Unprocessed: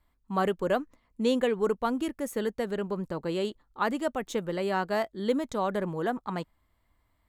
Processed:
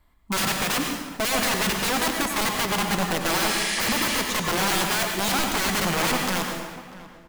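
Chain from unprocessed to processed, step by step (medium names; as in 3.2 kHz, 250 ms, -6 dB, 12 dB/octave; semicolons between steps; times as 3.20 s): integer overflow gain 28 dB; spectral replace 3.41–4.15 s, 1.6–11 kHz; echo from a far wall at 110 m, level -16 dB; plate-style reverb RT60 1.2 s, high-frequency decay 0.8×, pre-delay 80 ms, DRR 2 dB; trim +8 dB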